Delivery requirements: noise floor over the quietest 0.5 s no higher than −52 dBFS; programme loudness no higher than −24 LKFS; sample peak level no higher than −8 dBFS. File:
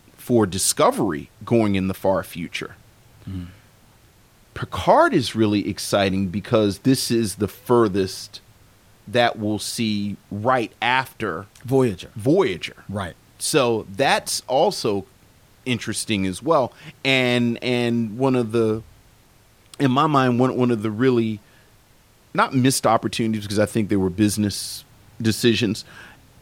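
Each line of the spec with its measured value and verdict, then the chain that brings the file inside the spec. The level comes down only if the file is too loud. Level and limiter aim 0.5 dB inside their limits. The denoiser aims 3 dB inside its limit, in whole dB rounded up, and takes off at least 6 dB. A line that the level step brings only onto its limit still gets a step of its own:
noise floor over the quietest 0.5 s −54 dBFS: in spec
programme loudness −21.0 LKFS: out of spec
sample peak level −2.5 dBFS: out of spec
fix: level −3.5 dB
brickwall limiter −8.5 dBFS

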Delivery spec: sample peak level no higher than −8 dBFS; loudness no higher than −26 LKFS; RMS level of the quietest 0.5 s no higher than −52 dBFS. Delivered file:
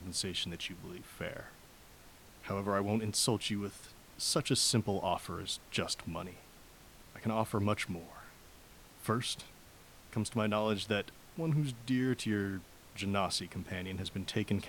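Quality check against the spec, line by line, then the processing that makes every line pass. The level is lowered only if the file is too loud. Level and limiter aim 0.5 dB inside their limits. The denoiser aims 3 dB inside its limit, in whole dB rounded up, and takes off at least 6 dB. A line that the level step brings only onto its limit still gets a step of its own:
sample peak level −16.5 dBFS: in spec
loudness −35.0 LKFS: in spec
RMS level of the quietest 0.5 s −57 dBFS: in spec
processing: no processing needed

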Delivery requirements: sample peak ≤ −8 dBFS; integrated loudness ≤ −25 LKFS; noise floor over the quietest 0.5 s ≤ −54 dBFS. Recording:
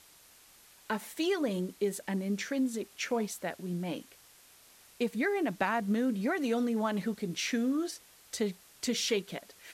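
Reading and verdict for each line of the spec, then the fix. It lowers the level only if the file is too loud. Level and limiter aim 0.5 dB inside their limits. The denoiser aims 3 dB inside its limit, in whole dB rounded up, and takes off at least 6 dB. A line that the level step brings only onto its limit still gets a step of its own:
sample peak −16.5 dBFS: in spec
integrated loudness −33.0 LKFS: in spec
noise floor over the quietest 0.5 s −59 dBFS: in spec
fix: no processing needed

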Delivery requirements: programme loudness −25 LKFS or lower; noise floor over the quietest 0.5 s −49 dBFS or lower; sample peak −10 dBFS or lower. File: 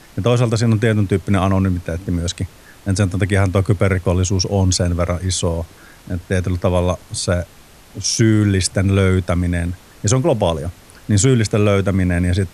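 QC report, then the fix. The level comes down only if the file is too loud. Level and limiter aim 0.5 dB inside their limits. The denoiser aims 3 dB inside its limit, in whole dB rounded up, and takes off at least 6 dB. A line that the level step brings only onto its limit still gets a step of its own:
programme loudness −17.5 LKFS: out of spec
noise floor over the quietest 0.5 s −44 dBFS: out of spec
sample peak −3.0 dBFS: out of spec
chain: level −8 dB

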